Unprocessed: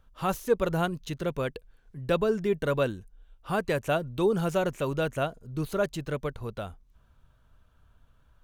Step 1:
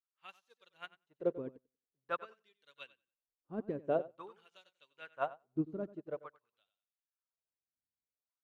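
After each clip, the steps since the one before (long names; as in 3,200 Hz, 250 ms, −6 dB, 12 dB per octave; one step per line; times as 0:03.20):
auto-filter band-pass sine 0.48 Hz 260–4,000 Hz
repeating echo 92 ms, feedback 31%, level −7.5 dB
expander for the loud parts 2.5 to 1, over −53 dBFS
level +3.5 dB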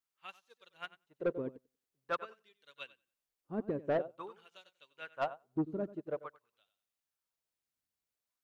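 soft clipping −29 dBFS, distortion −12 dB
level +4 dB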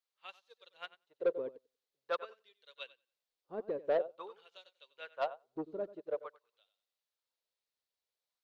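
octave-band graphic EQ 125/250/500/1,000/2,000/4,000 Hz −8/−5/+12/+4/+3/+12 dB
level −8.5 dB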